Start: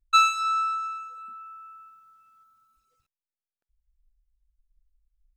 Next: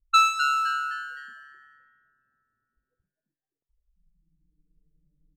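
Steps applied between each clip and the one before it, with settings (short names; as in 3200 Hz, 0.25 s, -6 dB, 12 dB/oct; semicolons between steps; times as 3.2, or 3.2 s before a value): modulation noise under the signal 30 dB; low-pass opened by the level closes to 430 Hz, open at -22.5 dBFS; frequency-shifting echo 0.257 s, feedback 35%, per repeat +140 Hz, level -9.5 dB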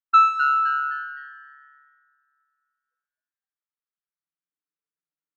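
ladder band-pass 1500 Hz, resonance 50%; gain +9 dB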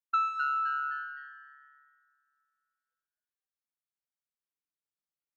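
compressor 2.5:1, threshold -22 dBFS, peak gain reduction 7.5 dB; gain -6.5 dB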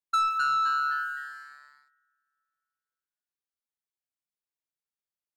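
sample leveller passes 2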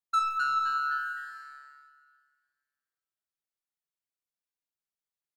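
flange 0.66 Hz, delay 3.9 ms, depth 2.9 ms, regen +83%; feedback echo 0.305 s, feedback 51%, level -21 dB; shoebox room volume 2400 m³, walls furnished, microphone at 0.63 m; gain +1 dB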